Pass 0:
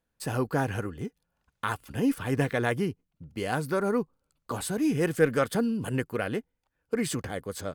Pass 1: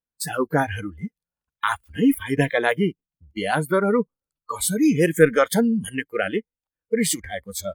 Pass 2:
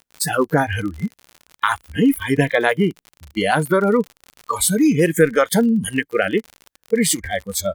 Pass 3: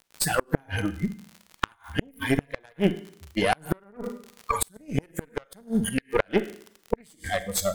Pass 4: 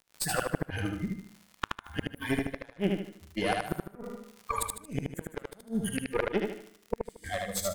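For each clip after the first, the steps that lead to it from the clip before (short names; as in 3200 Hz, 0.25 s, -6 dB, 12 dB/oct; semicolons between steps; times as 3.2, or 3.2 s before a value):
spectral noise reduction 24 dB; high shelf 7600 Hz +7 dB; gain +8 dB
compressor 2:1, threshold -23 dBFS, peak gain reduction 8.5 dB; crackle 57/s -35 dBFS; gain +7.5 dB
Schroeder reverb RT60 0.62 s, combs from 33 ms, DRR 10.5 dB; added harmonics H 3 -20 dB, 4 -13 dB, 6 -30 dB, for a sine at -1 dBFS; flipped gate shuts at -6 dBFS, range -34 dB; gain -1 dB
feedback echo 76 ms, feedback 37%, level -3 dB; gain -7 dB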